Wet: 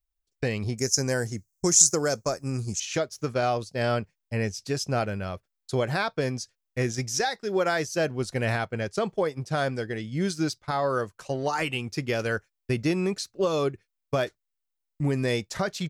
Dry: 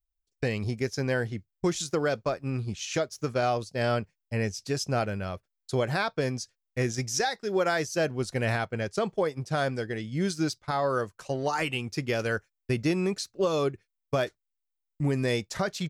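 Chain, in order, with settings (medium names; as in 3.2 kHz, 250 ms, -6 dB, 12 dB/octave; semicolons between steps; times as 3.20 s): 0.78–2.80 s: resonant high shelf 4.7 kHz +12 dB, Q 3; trim +1 dB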